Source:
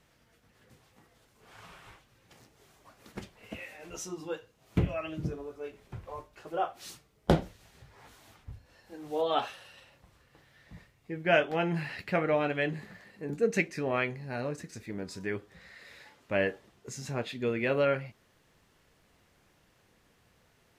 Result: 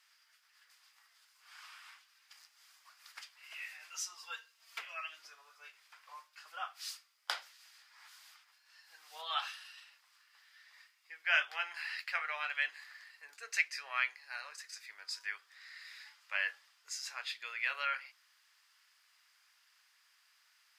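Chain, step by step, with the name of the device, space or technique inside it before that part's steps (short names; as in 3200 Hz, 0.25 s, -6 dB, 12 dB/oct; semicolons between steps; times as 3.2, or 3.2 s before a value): headphones lying on a table (HPF 1200 Hz 24 dB/oct; bell 4900 Hz +10 dB 0.2 oct); 4.14–4.81 comb 4.4 ms, depth 90%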